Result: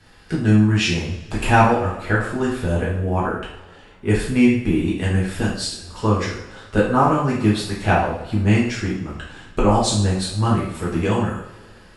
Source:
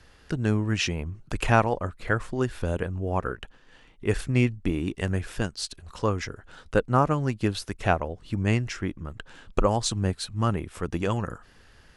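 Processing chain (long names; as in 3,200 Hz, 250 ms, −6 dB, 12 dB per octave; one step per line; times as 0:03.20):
notch filter 6,100 Hz, Q 13
coupled-rooms reverb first 0.57 s, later 2.2 s, from −20 dB, DRR −7 dB
level −1 dB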